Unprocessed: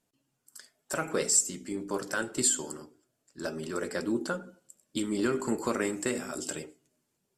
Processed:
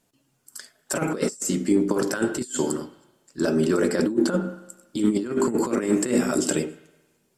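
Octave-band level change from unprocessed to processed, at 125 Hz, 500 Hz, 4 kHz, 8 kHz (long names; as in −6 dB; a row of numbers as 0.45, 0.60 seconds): +11.0, +9.0, +2.5, −1.5 decibels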